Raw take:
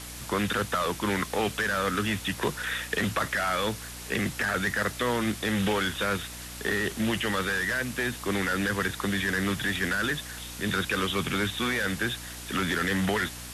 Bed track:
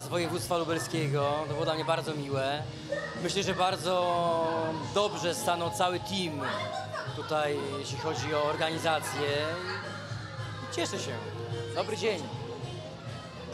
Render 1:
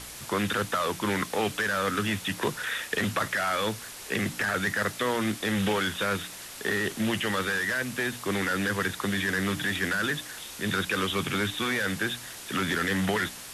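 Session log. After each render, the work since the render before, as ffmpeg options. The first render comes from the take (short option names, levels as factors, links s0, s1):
-af "bandreject=f=60:t=h:w=4,bandreject=f=120:t=h:w=4,bandreject=f=180:t=h:w=4,bandreject=f=240:t=h:w=4,bandreject=f=300:t=h:w=4"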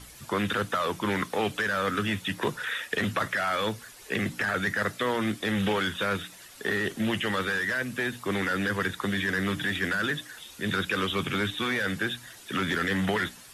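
-af "afftdn=nr=10:nf=-42"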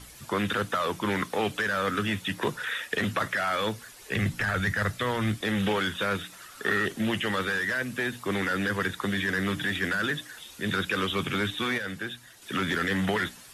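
-filter_complex "[0:a]asplit=3[s0][s1][s2];[s0]afade=t=out:st=4.1:d=0.02[s3];[s1]asubboost=boost=5.5:cutoff=120,afade=t=in:st=4.1:d=0.02,afade=t=out:st=5.4:d=0.02[s4];[s2]afade=t=in:st=5.4:d=0.02[s5];[s3][s4][s5]amix=inputs=3:normalize=0,asettb=1/sr,asplit=3[s6][s7][s8];[s6]atrim=end=6.334[s9];[s7]atrim=start=6.33:end=6.86,asetpts=PTS-STARTPTS,afade=t=in:d=0.004:c=qsin,afade=t=out:st=0.526:d=0.004:c=qsin,equalizer=f=1300:w=3.6:g=14[s10];[s8]atrim=start=6.856[s11];[s9][s10]acrossfade=d=0.004:c1=hsin:c2=qsin[s12];[s12][s11]acrossfade=d=0.004:c1=qsin:c2=hsin,asplit=3[s13][s14][s15];[s13]atrim=end=11.782[s16];[s14]atrim=start=11.778:end=12.422,asetpts=PTS-STARTPTS,volume=0.531[s17];[s15]atrim=start=12.418[s18];[s16][s17]acrossfade=d=0.004:c1=hsin:c2=hsin[s19];[s19][s18]acrossfade=d=0.004:c1=hsin:c2=hsin"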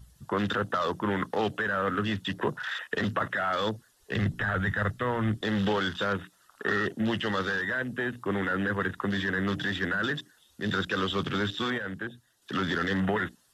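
-af "afwtdn=0.0112,equalizer=f=2300:w=5.1:g=-12.5"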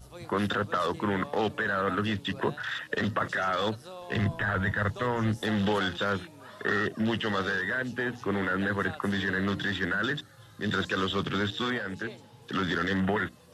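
-filter_complex "[1:a]volume=0.168[s0];[0:a][s0]amix=inputs=2:normalize=0"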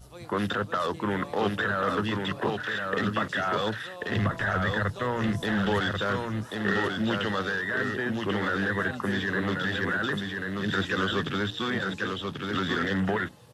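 -af "aecho=1:1:1088:0.631"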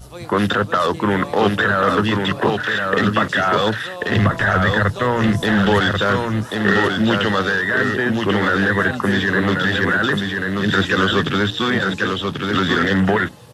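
-af "volume=3.35"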